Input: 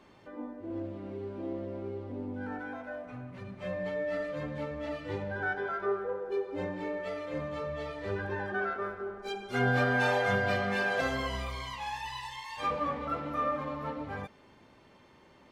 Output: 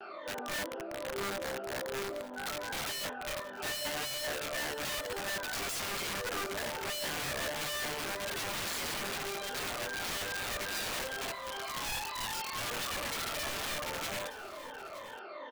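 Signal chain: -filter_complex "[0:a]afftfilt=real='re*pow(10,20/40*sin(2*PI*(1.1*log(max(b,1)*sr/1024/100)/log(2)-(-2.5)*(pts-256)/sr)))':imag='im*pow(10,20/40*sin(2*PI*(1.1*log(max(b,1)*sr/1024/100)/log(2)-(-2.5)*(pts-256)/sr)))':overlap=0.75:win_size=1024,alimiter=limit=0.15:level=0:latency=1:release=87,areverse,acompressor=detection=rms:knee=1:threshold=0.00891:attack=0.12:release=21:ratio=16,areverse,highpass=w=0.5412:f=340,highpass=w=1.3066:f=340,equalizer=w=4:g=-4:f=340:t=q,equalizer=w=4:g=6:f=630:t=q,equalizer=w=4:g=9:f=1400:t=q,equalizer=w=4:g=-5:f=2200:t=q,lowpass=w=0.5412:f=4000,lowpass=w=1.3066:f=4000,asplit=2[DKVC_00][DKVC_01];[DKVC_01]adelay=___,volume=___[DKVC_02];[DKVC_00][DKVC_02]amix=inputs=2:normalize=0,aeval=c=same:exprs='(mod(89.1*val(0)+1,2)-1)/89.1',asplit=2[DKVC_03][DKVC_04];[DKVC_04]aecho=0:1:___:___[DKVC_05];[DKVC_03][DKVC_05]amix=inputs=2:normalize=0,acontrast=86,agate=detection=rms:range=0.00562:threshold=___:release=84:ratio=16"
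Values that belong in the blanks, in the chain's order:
25, 0.668, 919, 0.168, 0.00282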